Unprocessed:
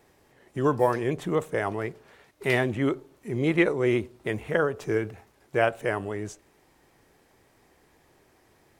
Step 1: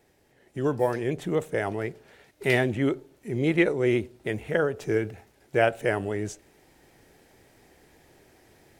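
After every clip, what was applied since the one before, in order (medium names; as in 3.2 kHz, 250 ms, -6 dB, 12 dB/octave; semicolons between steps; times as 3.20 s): peaking EQ 1.1 kHz -8.5 dB 0.45 oct; gain riding 2 s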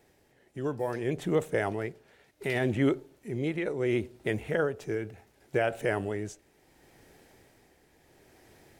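peak limiter -15 dBFS, peak gain reduction 8 dB; tremolo 0.7 Hz, depth 52%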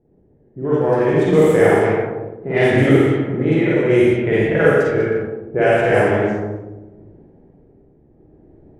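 Schroeder reverb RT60 1.7 s, DRR -8.5 dB; dynamic bell 4.2 kHz, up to -4 dB, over -42 dBFS, Q 0.8; level-controlled noise filter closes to 320 Hz, open at -15 dBFS; trim +6.5 dB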